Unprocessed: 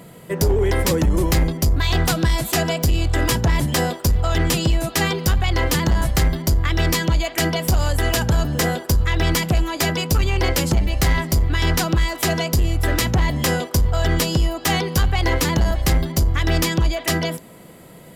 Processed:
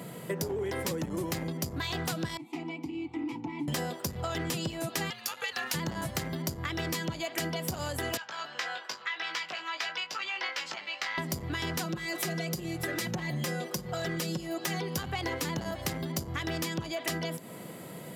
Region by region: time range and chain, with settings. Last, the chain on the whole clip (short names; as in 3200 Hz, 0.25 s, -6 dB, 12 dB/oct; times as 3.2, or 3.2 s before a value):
2.37–3.68 vowel filter u + notch comb 200 Hz
5.1–5.74 HPF 1300 Hz + frequency shift -270 Hz
8.17–11.18 HPF 1400 Hz + air absorption 190 m + doubler 19 ms -6 dB
11.85–14.81 comb 5.6 ms, depth 79% + compressor 2:1, threshold -21 dBFS
whole clip: HPF 110 Hz 24 dB/oct; compressor, threshold -31 dBFS